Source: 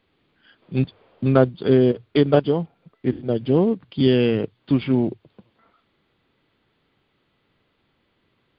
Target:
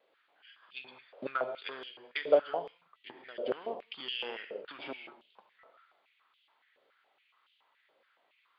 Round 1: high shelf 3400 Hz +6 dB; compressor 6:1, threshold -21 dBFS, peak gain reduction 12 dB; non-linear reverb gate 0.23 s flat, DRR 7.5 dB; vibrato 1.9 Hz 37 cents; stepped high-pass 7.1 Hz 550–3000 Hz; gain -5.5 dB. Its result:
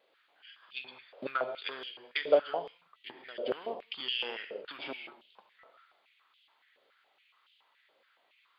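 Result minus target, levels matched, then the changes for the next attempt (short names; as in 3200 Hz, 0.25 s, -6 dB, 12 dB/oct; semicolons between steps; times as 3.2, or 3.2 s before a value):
4000 Hz band +3.5 dB
change: high shelf 3400 Hz -3.5 dB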